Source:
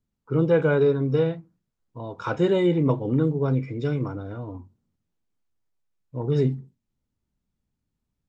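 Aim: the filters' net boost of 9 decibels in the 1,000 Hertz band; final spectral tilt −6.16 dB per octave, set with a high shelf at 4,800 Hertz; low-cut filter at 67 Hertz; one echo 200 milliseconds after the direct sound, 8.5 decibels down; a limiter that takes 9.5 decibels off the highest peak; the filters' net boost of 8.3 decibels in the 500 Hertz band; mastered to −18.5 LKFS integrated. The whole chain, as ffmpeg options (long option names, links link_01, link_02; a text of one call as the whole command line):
ffmpeg -i in.wav -af "highpass=67,equalizer=frequency=500:width_type=o:gain=8,equalizer=frequency=1000:width_type=o:gain=8.5,highshelf=frequency=4800:gain=5.5,alimiter=limit=-11dB:level=0:latency=1,aecho=1:1:200:0.376,volume=2.5dB" out.wav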